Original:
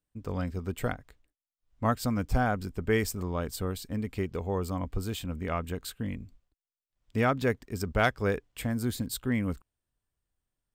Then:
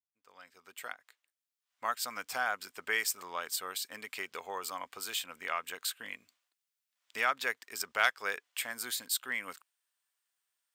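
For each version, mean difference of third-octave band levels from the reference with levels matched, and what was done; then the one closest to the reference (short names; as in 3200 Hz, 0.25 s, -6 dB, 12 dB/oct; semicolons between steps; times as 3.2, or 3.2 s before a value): 12.0 dB: opening faded in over 2.53 s; HPF 1300 Hz 12 dB/oct; in parallel at 0 dB: compressor, threshold -43 dBFS, peak gain reduction 18 dB; on the sum: gain +1.5 dB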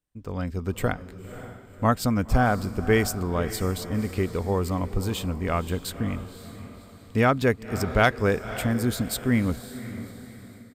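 4.5 dB: downsampling 32000 Hz; diffused feedback echo 0.548 s, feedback 44%, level -13 dB; AGC gain up to 5.5 dB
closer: second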